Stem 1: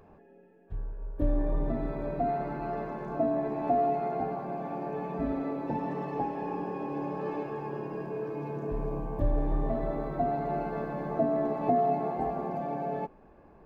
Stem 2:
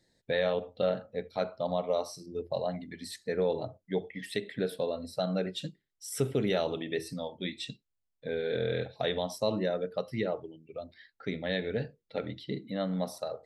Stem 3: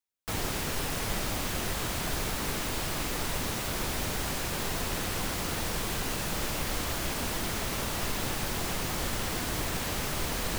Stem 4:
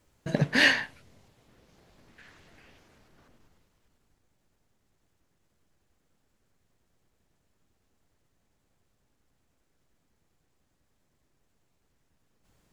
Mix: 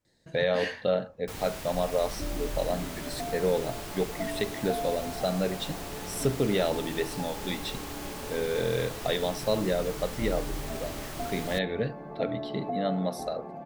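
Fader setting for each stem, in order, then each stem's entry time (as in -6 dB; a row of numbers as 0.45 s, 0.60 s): -7.5 dB, +2.5 dB, -8.0 dB, -14.5 dB; 1.00 s, 0.05 s, 1.00 s, 0.00 s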